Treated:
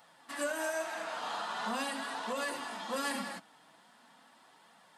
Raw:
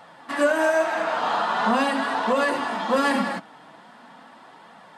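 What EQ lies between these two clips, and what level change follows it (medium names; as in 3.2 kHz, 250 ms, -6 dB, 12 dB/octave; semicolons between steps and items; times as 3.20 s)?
pre-emphasis filter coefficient 0.8; -2.0 dB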